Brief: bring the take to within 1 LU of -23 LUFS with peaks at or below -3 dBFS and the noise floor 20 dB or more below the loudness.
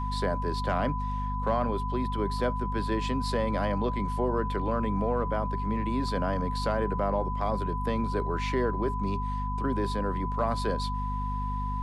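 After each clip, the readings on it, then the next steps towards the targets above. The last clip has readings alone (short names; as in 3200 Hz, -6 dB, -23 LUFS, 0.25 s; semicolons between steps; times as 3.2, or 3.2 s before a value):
hum 50 Hz; harmonics up to 250 Hz; hum level -29 dBFS; steady tone 1000 Hz; tone level -33 dBFS; loudness -29.5 LUFS; peak -15.0 dBFS; loudness target -23.0 LUFS
-> notches 50/100/150/200/250 Hz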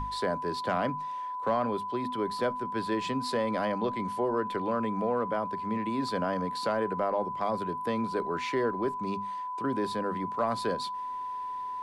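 hum none; steady tone 1000 Hz; tone level -33 dBFS
-> notch 1000 Hz, Q 30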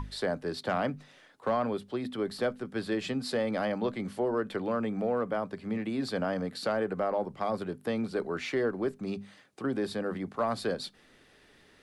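steady tone none; loudness -32.5 LUFS; peak -18.5 dBFS; loudness target -23.0 LUFS
-> gain +9.5 dB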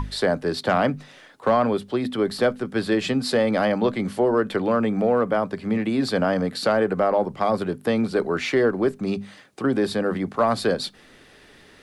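loudness -23.0 LUFS; peak -9.0 dBFS; noise floor -51 dBFS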